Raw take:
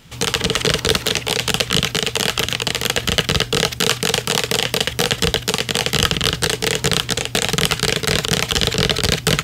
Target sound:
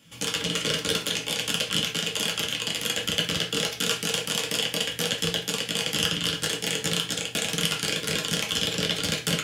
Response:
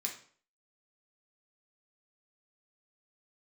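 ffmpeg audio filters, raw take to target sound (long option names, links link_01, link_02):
-filter_complex "[0:a]highpass=84[link_01];[1:a]atrim=start_sample=2205,asetrate=61740,aresample=44100[link_02];[link_01][link_02]afir=irnorm=-1:irlink=0,volume=-6dB"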